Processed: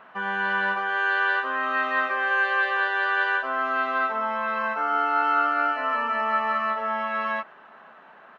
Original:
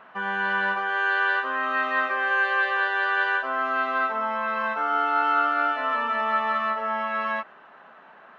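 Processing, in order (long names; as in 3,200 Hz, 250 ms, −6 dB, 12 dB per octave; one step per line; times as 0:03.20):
0:04.59–0:06.70: notch filter 3,500 Hz, Q 5.1
slap from a distant wall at 90 metres, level −29 dB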